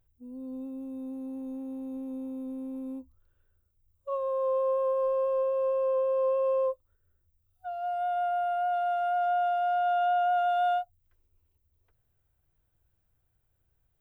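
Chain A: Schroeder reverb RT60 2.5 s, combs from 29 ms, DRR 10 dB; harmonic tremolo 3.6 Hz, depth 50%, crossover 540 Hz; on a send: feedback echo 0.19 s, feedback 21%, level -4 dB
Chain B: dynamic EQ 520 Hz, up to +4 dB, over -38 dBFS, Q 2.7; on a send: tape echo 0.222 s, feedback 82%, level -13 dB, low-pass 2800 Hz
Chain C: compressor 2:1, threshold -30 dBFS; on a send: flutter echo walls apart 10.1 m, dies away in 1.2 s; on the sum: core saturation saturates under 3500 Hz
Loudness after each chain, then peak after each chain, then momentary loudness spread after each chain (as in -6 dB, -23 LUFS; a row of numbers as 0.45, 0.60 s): -30.0, -26.0, -35.0 LUFS; -18.5, -16.0, -18.5 dBFS; 16, 19, 12 LU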